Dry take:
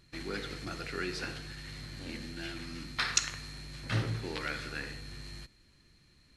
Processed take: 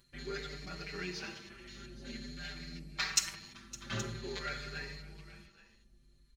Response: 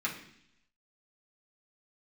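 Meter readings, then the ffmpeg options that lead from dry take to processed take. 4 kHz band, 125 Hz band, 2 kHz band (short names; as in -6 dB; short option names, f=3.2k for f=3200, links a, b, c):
-2.5 dB, -8.0 dB, -4.0 dB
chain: -filter_complex "[0:a]afwtdn=0.00398,highshelf=f=7.6k:g=11.5,aecho=1:1:5.1:0.75,acompressor=mode=upward:threshold=-52dB:ratio=2.5,asplit=2[a][b];[b]aecho=0:1:561|822:0.106|0.126[c];[a][c]amix=inputs=2:normalize=0,asplit=2[d][e];[e]adelay=5.3,afreqshift=0.48[f];[d][f]amix=inputs=2:normalize=1,volume=-3dB"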